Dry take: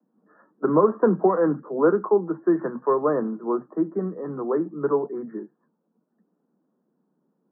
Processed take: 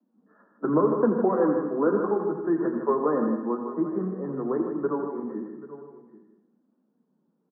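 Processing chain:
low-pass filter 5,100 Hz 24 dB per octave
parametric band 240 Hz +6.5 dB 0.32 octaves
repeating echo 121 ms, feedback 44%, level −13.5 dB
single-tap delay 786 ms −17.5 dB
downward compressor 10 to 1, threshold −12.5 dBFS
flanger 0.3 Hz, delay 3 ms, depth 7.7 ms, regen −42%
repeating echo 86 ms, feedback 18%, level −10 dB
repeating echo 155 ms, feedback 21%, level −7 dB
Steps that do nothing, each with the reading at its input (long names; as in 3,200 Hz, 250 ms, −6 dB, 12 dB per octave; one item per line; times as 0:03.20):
low-pass filter 5,100 Hz: nothing at its input above 1,400 Hz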